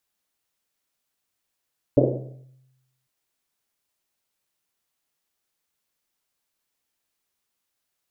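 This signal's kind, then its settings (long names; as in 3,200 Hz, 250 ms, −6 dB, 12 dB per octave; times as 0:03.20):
drum after Risset, pitch 130 Hz, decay 1.11 s, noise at 430 Hz, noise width 360 Hz, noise 65%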